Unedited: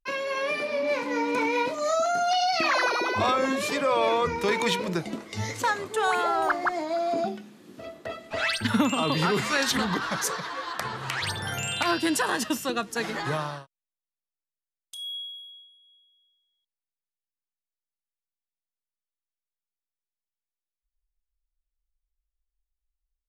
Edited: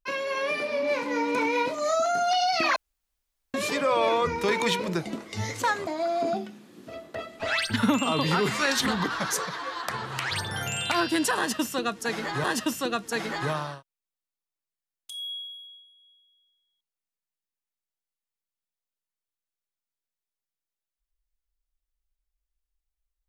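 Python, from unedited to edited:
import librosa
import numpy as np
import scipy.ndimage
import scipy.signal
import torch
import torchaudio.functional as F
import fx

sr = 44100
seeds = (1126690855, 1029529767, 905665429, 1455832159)

y = fx.edit(x, sr, fx.room_tone_fill(start_s=2.76, length_s=0.78),
    fx.cut(start_s=5.87, length_s=0.91),
    fx.repeat(start_s=12.28, length_s=1.07, count=2), tone=tone)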